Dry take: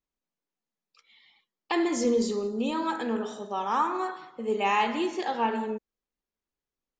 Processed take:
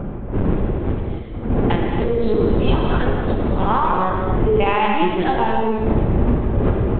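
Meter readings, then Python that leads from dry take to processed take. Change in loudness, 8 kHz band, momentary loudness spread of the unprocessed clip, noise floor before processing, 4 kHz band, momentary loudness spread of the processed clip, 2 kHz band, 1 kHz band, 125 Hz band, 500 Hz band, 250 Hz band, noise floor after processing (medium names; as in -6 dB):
+9.0 dB, under -35 dB, 8 LU, under -85 dBFS, +5.5 dB, 6 LU, +7.5 dB, +8.5 dB, no reading, +10.5 dB, +10.5 dB, -27 dBFS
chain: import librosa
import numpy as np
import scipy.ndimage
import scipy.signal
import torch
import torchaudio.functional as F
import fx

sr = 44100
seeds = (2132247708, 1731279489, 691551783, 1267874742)

y = fx.dmg_wind(x, sr, seeds[0], corner_hz=300.0, level_db=-26.0)
y = fx.hum_notches(y, sr, base_hz=60, count=4)
y = fx.env_lowpass(y, sr, base_hz=2200.0, full_db=-15.0)
y = fx.peak_eq(y, sr, hz=82.0, db=5.0, octaves=1.2)
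y = fx.over_compress(y, sr, threshold_db=-26.0, ratio=-1.0)
y = y + 10.0 ** (-16.5 / 20.0) * np.pad(y, (int(302 * sr / 1000.0), 0))[:len(y)]
y = fx.lpc_vocoder(y, sr, seeds[1], excitation='pitch_kept', order=10)
y = fx.rev_gated(y, sr, seeds[2], gate_ms=310, shape='flat', drr_db=1.0)
y = y * librosa.db_to_amplitude(6.5)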